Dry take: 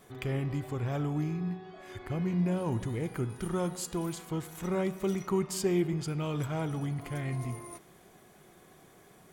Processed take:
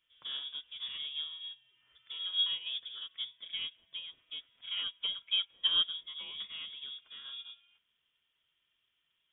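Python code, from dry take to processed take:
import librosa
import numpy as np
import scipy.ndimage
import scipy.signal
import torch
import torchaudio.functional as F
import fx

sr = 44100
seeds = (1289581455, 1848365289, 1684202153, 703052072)

y = fx.freq_invert(x, sr, carrier_hz=3500)
y = fx.upward_expand(y, sr, threshold_db=-39.0, expansion=2.5)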